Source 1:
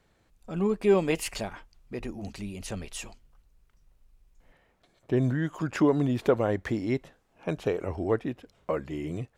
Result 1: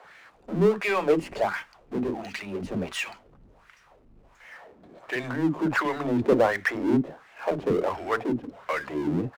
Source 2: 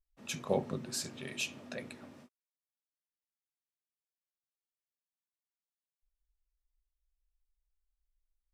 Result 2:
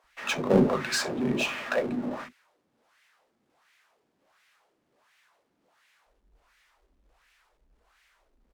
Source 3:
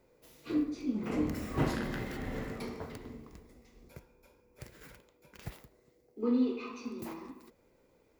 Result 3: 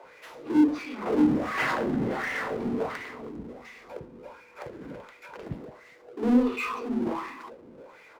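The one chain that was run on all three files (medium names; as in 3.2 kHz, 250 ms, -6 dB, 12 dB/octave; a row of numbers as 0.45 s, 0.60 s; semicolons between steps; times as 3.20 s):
wah-wah 1.4 Hz 240–2100 Hz, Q 2.2; power-law waveshaper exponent 0.7; bands offset in time highs, lows 40 ms, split 310 Hz; normalise loudness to -27 LUFS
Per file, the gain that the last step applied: +9.0 dB, +18.0 dB, +12.5 dB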